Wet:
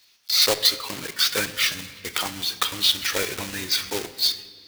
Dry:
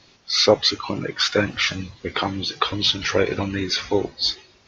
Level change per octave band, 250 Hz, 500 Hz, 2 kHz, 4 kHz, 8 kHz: −10.5 dB, −9.5 dB, −1.5 dB, +0.5 dB, can't be measured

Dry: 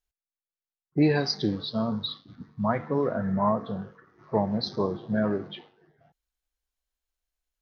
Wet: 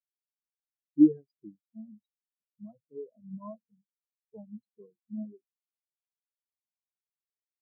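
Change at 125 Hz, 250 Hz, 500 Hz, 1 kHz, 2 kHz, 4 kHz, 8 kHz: −18.5 dB, −2.0 dB, −14.5 dB, −26.0 dB, below −40 dB, below −40 dB, can't be measured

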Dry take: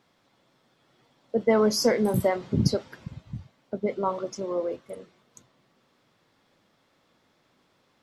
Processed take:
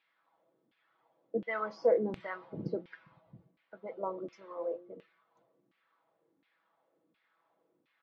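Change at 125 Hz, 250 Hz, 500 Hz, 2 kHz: −18.0, −14.5, −8.0, −6.0 decibels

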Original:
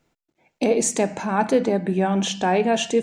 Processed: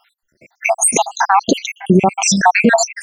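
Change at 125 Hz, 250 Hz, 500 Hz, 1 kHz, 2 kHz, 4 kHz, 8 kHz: +7.5, +5.0, +2.0, +10.0, +13.0, +6.5, +12.0 decibels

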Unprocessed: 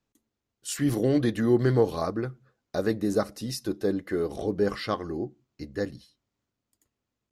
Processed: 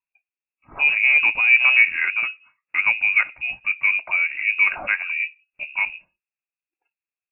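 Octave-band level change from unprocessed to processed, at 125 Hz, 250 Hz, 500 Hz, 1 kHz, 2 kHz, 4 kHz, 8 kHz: below −25 dB, below −25 dB, −20.0 dB, +2.5 dB, +25.5 dB, +7.5 dB, below −40 dB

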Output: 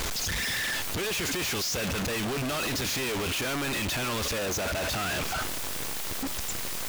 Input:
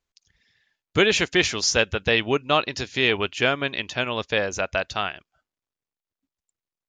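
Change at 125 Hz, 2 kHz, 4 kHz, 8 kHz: −1.5, −6.0, −4.5, +1.5 decibels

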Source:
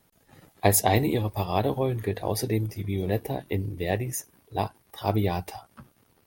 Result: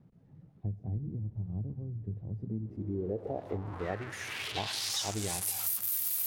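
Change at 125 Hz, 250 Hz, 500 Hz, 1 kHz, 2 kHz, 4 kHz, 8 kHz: −8.5, −10.0, −12.0, −14.0, −6.0, +0.5, −4.0 decibels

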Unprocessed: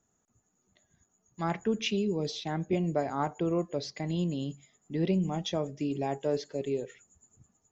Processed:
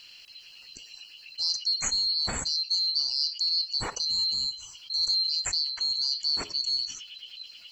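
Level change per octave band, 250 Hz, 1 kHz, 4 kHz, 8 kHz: −19.5 dB, −7.5 dB, +18.5 dB, can't be measured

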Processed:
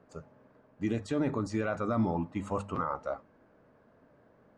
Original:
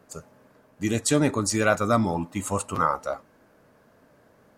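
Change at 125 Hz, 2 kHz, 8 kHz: −7.0, −12.5, −24.5 decibels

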